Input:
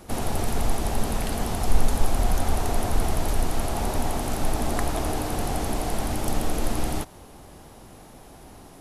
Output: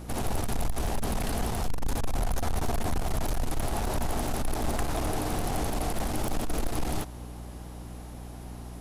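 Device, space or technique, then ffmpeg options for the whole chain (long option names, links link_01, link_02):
valve amplifier with mains hum: -filter_complex "[0:a]asettb=1/sr,asplit=3[link_01][link_02][link_03];[link_01]atrim=end=2.354[link_04];[link_02]atrim=start=2.35:end=2.94,asetpts=PTS-STARTPTS,afade=type=in:duration=0.004:curve=qsin,afade=type=out:start_time=0.586:duration=0.004:curve=qsin,asplit=2[link_05][link_06];[link_06]adelay=13,volume=-6dB[link_07];[link_05][link_07]amix=inputs=2:normalize=0,atrim=end_sample=26019[link_08];[link_03]atrim=start=2.936[link_09];[link_04][link_08]acrossfade=duration=0.004:curve1=hsin:curve2=qsin[link_10];[link_10][link_09]acrossfade=duration=0.004:curve1=qsin:curve2=hsin,aeval=exprs='(tanh(14.1*val(0)+0.2)-tanh(0.2))/14.1':channel_layout=same,aeval=exprs='val(0)+0.01*(sin(2*PI*60*n/s)+sin(2*PI*2*60*n/s)/2+sin(2*PI*3*60*n/s)/3+sin(2*PI*4*60*n/s)/4+sin(2*PI*5*60*n/s)/5)':channel_layout=same"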